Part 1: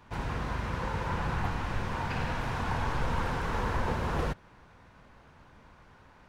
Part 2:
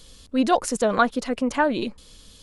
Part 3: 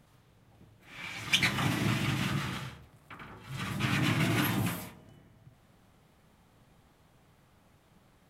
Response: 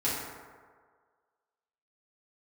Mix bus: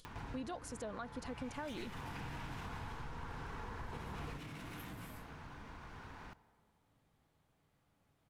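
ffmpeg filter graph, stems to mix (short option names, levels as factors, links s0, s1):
-filter_complex "[0:a]equalizer=f=560:t=o:w=0.25:g=-8,acompressor=threshold=0.00794:ratio=2.5,adelay=50,volume=0.841,asplit=2[s0][s1];[s1]volume=0.158[s2];[1:a]agate=range=0.0141:threshold=0.0158:ratio=16:detection=peak,volume=0.282,asplit=2[s3][s4];[2:a]alimiter=limit=0.0841:level=0:latency=1:release=34,asoftclip=type=hard:threshold=0.0335,adelay=350,volume=0.188,asplit=2[s5][s6];[s6]volume=0.126[s7];[s4]apad=whole_len=279252[s8];[s0][s8]sidechaincompress=threshold=0.0126:ratio=8:attack=16:release=230[s9];[s9][s3]amix=inputs=2:normalize=0,acompressor=mode=upward:threshold=0.01:ratio=2.5,alimiter=level_in=1.58:limit=0.0631:level=0:latency=1:release=249,volume=0.631,volume=1[s10];[3:a]atrim=start_sample=2205[s11];[s2][s7]amix=inputs=2:normalize=0[s12];[s12][s11]afir=irnorm=-1:irlink=0[s13];[s5][s10][s13]amix=inputs=3:normalize=0,acompressor=threshold=0.00282:ratio=1.5"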